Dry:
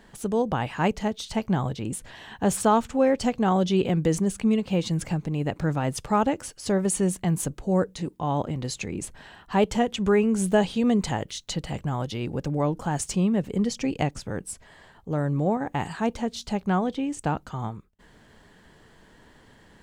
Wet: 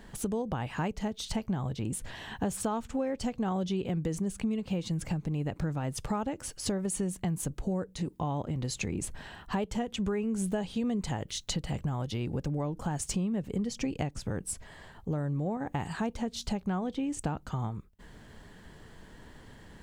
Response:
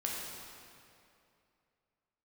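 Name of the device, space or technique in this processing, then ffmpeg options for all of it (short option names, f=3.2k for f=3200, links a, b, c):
ASMR close-microphone chain: -af "lowshelf=f=170:g=7,acompressor=threshold=-29dB:ratio=6,highshelf=f=9.6k:g=3.5"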